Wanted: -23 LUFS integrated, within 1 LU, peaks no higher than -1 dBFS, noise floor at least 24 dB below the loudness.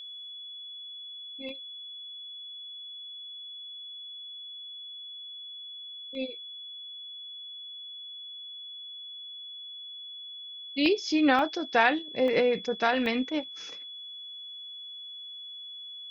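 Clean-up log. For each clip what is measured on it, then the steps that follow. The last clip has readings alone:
dropouts 6; longest dropout 1.1 ms; steady tone 3.4 kHz; tone level -40 dBFS; loudness -32.5 LUFS; peak level -9.0 dBFS; loudness target -23.0 LUFS
-> interpolate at 1.49/6.15/10.86/11.39/12.28/13.06 s, 1.1 ms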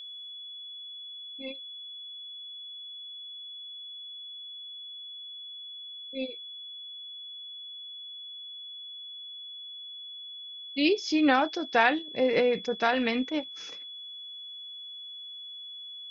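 dropouts 0; steady tone 3.4 kHz; tone level -40 dBFS
-> band-stop 3.4 kHz, Q 30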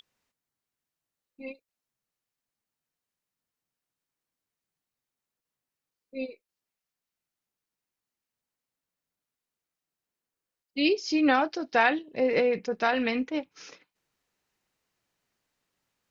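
steady tone not found; loudness -26.0 LUFS; peak level -9.5 dBFS; loudness target -23.0 LUFS
-> trim +3 dB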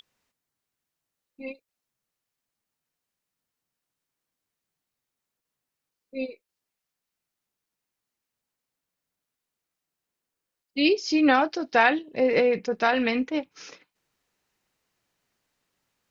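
loudness -23.0 LUFS; peak level -6.5 dBFS; noise floor -86 dBFS

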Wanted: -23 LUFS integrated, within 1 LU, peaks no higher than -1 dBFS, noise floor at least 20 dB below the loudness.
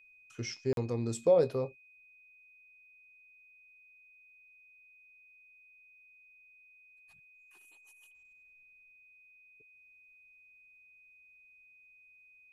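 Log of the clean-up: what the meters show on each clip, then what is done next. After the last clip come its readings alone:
dropouts 1; longest dropout 42 ms; steady tone 2.5 kHz; tone level -58 dBFS; loudness -31.0 LUFS; peak level -15.5 dBFS; loudness target -23.0 LUFS
-> interpolate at 0.73 s, 42 ms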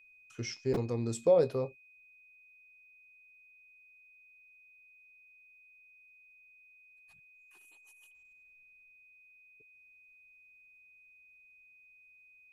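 dropouts 0; steady tone 2.5 kHz; tone level -58 dBFS
-> band-stop 2.5 kHz, Q 30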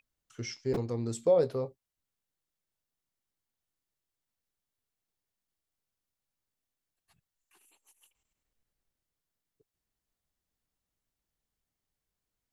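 steady tone not found; loudness -31.0 LUFS; peak level -15.5 dBFS; loudness target -23.0 LUFS
-> trim +8 dB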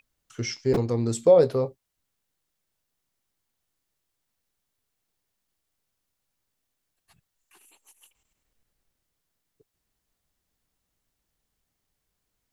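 loudness -23.0 LUFS; peak level -7.5 dBFS; noise floor -81 dBFS

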